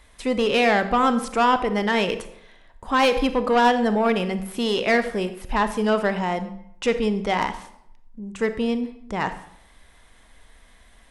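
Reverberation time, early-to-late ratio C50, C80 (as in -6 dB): 0.75 s, 11.5 dB, 14.5 dB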